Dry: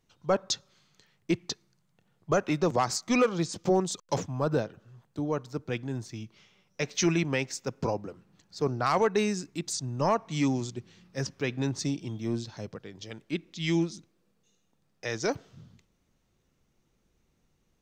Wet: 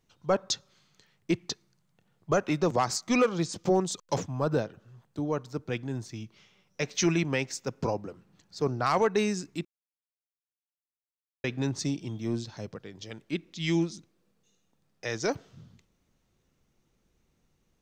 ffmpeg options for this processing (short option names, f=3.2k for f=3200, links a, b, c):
-filter_complex "[0:a]asplit=3[a][b][c];[a]atrim=end=9.65,asetpts=PTS-STARTPTS,afade=t=out:st=9.646:d=0.004:c=hsin[d];[b]atrim=start=9.65:end=11.44,asetpts=PTS-STARTPTS,volume=0[e];[c]atrim=start=11.44,asetpts=PTS-STARTPTS,afade=t=in:d=0.004:c=hsin[f];[d][e][f]concat=n=3:v=0:a=1"